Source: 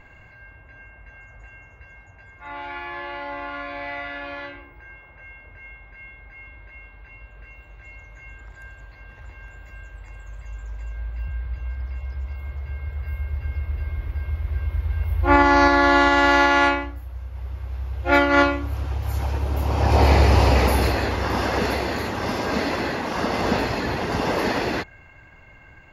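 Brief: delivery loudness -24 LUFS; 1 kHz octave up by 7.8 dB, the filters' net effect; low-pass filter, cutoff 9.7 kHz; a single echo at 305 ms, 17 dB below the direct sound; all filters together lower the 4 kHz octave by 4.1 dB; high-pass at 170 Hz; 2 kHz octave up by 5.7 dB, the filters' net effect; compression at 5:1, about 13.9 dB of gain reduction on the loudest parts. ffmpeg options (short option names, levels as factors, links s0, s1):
-af "highpass=170,lowpass=9700,equalizer=f=1000:t=o:g=9,equalizer=f=2000:t=o:g=5.5,equalizer=f=4000:t=o:g=-9,acompressor=threshold=0.0794:ratio=5,aecho=1:1:305:0.141,volume=1.33"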